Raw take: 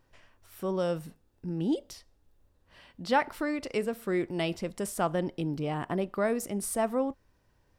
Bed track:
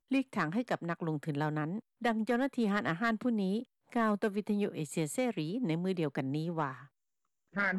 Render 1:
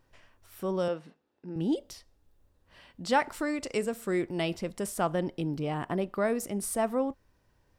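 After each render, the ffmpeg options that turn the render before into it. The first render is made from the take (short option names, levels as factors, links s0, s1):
-filter_complex "[0:a]asettb=1/sr,asplit=3[s0][s1][s2];[s0]atrim=end=0.884[s3];[s1]atrim=start=0.88:end=1.56,asetpts=PTS-STARTPTS,afade=t=in:d=0.004:c=qsin,afade=t=out:st=0.676:d=0.004:c=qsin,highpass=270,lowpass=3800[s4];[s2]atrim=start=1.556[s5];[s3][s4]acrossfade=d=0.004:c1=hsin:c2=qsin[s6];[s6][s5]acrossfade=d=0.004:c1=qsin:c2=hsin,asettb=1/sr,asplit=3[s7][s8][s9];[s7]atrim=end=3.044[s10];[s8]atrim=start=3.04:end=4.21,asetpts=PTS-STARTPTS,afade=t=in:d=0.004:c=qsin,afade=t=out:st=1.166:d=0.004:c=qsin,equalizer=f=7500:t=o:w=0.64:g=9.5[s11];[s9]atrim=start=4.206[s12];[s10][s11]acrossfade=d=0.004:c1=hsin:c2=qsin[s13];[s13][s12]acrossfade=d=0.004:c1=qsin:c2=hsin"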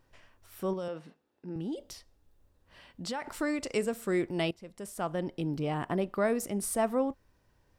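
-filter_complex "[0:a]asettb=1/sr,asplit=3[s0][s1][s2];[s0]atrim=end=0.734[s3];[s1]atrim=start=0.73:end=3.4,asetpts=PTS-STARTPTS,afade=t=in:d=0.004:c=qsin,afade=t=out:st=2.666:d=0.004:c=qsin,acompressor=threshold=0.0251:ratio=6:attack=3.2:release=140:knee=1:detection=peak[s4];[s2]atrim=start=3.396[s5];[s3][s4]acrossfade=d=0.004:c1=hsin:c2=qsin[s6];[s6][s5]acrossfade=d=0.004:c1=qsin:c2=hsin,asplit=2[s7][s8];[s7]atrim=end=4.51,asetpts=PTS-STARTPTS,afade=t=out:st=4.506:d=0.004:c=hsin:silence=0.112202[s9];[s8]atrim=start=4.51,asetpts=PTS-STARTPTS,afade=t=in:d=1.07:silence=0.112202[s10];[s9][s10]concat=n=2:v=0:a=1"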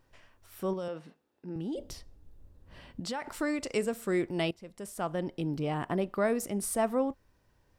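-filter_complex "[0:a]asettb=1/sr,asplit=3[s0][s1][s2];[s0]atrim=end=1.754[s3];[s1]atrim=start=1.75:end=3,asetpts=PTS-STARTPTS,afade=t=in:d=0.004:c=qsin,afade=t=out:st=1.246:d=0.004:c=qsin,lowshelf=f=460:g=12[s4];[s2]atrim=start=2.996[s5];[s3][s4]acrossfade=d=0.004:c1=hsin:c2=qsin[s6];[s6][s5]acrossfade=d=0.004:c1=qsin:c2=hsin"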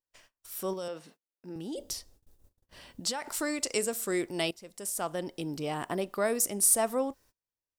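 -af "bass=f=250:g=-7,treble=f=4000:g=13,agate=range=0.0316:threshold=0.00141:ratio=16:detection=peak"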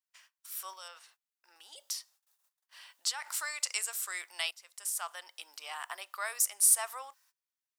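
-af "highpass=f=1000:w=0.5412,highpass=f=1000:w=1.3066"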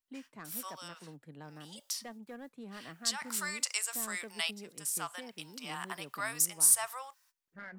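-filter_complex "[1:a]volume=0.158[s0];[0:a][s0]amix=inputs=2:normalize=0"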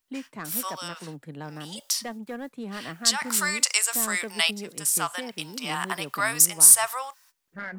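-af "volume=3.55,alimiter=limit=0.891:level=0:latency=1"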